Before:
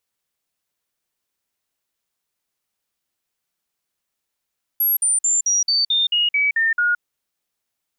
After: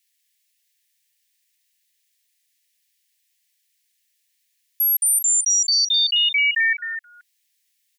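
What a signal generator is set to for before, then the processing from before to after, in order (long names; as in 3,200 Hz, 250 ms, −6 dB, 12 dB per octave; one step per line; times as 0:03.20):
stepped sweep 11,500 Hz down, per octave 3, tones 10, 0.17 s, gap 0.05 s −15 dBFS
Butterworth high-pass 1,700 Hz 96 dB per octave
on a send: single-tap delay 259 ms −9.5 dB
on the sum: one half of a high-frequency compander encoder only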